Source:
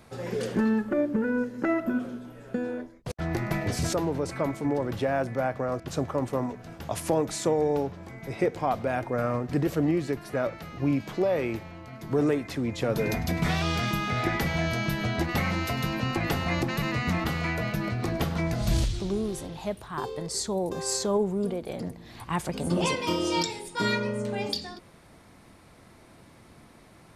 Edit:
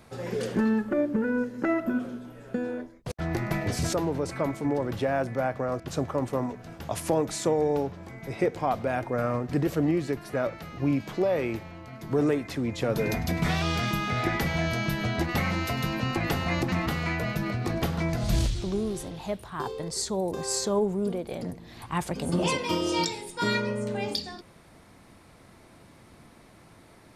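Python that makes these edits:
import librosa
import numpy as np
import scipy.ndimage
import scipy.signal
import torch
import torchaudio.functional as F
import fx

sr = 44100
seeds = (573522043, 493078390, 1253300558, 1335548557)

y = fx.edit(x, sr, fx.cut(start_s=16.72, length_s=0.38), tone=tone)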